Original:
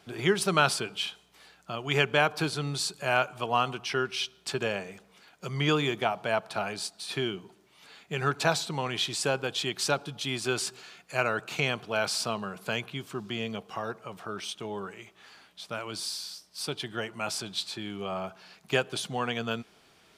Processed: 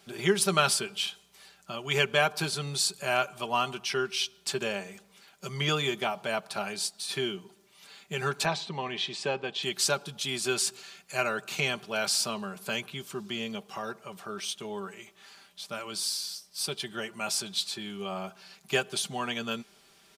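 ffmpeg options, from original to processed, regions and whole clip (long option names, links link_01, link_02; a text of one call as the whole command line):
ffmpeg -i in.wav -filter_complex "[0:a]asettb=1/sr,asplit=3[link_01][link_02][link_03];[link_01]atrim=end=8.454[link_04];[link_02]atrim=start=8.45:end=9.63,asetpts=PTS-STARTPTS,afade=type=in:duration=0.004:curve=qsin,afade=type=out:start_time=1.176:duration=0.004:curve=qsin,highpass=130,lowpass=3200,bandreject=frequency=1400:width=7.2[link_05];[link_03]atrim=start=9.626[link_06];[link_04][link_05]acrossfade=duration=0.004:curve1=hsin:curve2=qsin[link_07];[link_07][link_06]acrossfade=duration=0.004:curve1=qsin:curve2=hsin,highshelf=frequency=4100:gain=9.5,aecho=1:1:5.1:0.55,volume=-3.5dB" out.wav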